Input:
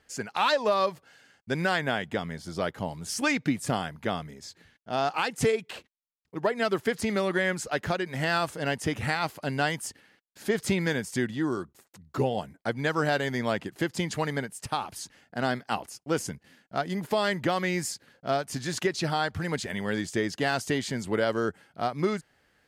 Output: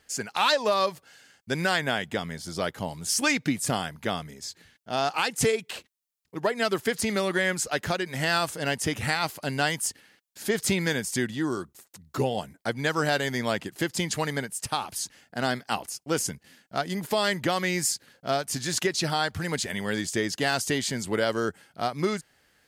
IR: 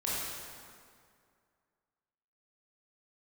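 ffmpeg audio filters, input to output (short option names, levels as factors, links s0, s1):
-af "highshelf=f=3600:g=9.5"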